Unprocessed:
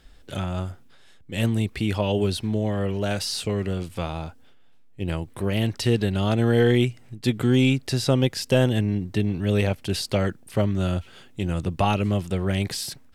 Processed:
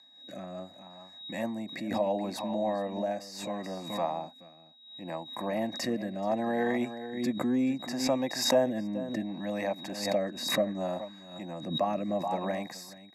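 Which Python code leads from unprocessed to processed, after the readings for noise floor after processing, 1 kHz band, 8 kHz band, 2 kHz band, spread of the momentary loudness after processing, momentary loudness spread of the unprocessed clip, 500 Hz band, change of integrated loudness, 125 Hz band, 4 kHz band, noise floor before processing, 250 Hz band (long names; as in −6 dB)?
−54 dBFS, −2.0 dB, −5.0 dB, −7.5 dB, 14 LU, 11 LU, −5.0 dB, −7.5 dB, −20.0 dB, −5.5 dB, −49 dBFS, −7.5 dB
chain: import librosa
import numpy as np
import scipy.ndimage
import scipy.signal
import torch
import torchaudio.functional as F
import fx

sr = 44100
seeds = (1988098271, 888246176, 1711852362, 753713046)

y = x + 10.0 ** (-12.0 / 20.0) * np.pad(x, (int(429 * sr / 1000.0), 0))[:len(x)]
y = fx.dynamic_eq(y, sr, hz=600.0, q=0.95, threshold_db=-36.0, ratio=4.0, max_db=7)
y = fx.notch(y, sr, hz=4000.0, q=7.8)
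y = y + 10.0 ** (-36.0 / 20.0) * np.sin(2.0 * np.pi * 3800.0 * np.arange(len(y)) / sr)
y = scipy.signal.sosfilt(scipy.signal.butter(4, 240.0, 'highpass', fs=sr, output='sos'), y)
y = fx.fixed_phaser(y, sr, hz=2100.0, stages=8)
y = fx.rotary(y, sr, hz=0.7)
y = scipy.signal.sosfilt(scipy.signal.butter(2, 11000.0, 'lowpass', fs=sr, output='sos'), y)
y = fx.band_shelf(y, sr, hz=3600.0, db=-12.0, octaves=1.7)
y = fx.pre_swell(y, sr, db_per_s=73.0)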